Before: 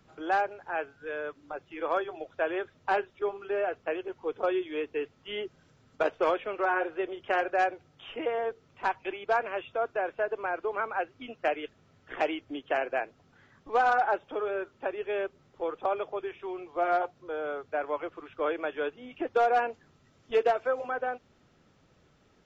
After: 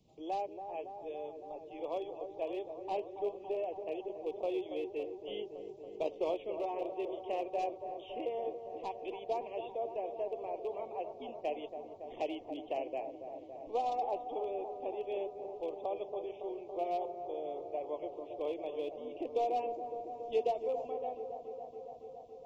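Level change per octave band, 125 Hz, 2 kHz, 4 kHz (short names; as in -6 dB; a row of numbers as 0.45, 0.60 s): n/a, -22.5 dB, -8.5 dB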